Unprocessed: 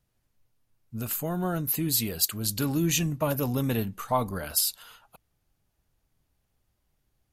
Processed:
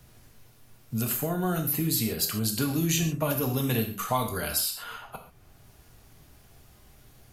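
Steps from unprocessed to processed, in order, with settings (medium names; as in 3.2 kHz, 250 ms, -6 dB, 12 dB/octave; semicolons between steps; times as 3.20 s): gated-style reverb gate 160 ms falling, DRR 3 dB; three bands compressed up and down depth 70%; trim -1.5 dB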